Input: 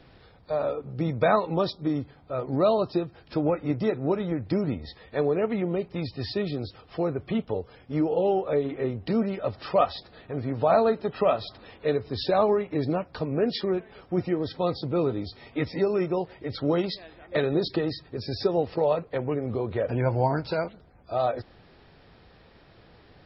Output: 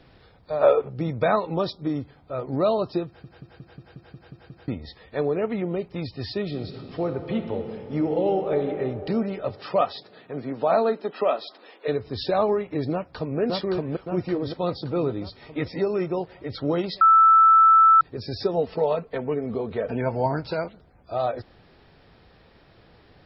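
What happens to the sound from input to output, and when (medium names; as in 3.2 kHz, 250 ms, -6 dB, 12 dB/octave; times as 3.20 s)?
0.62–0.89 s: time-frequency box 350–3600 Hz +12 dB
3.06 s: stutter in place 0.18 s, 9 plays
6.43–8.61 s: reverb throw, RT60 3 s, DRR 5.5 dB
9.49–11.87 s: high-pass 92 Hz -> 340 Hz 24 dB/octave
12.92–13.39 s: echo throw 570 ms, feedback 55%, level -0.5 dB
17.01–18.01 s: bleep 1.32 kHz -11 dBFS
18.53–20.26 s: comb 4.5 ms, depth 52%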